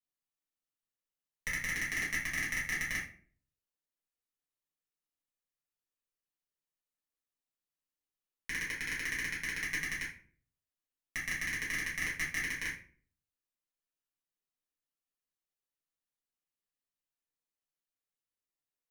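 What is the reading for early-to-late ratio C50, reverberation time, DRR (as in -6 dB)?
5.5 dB, 0.45 s, -8.5 dB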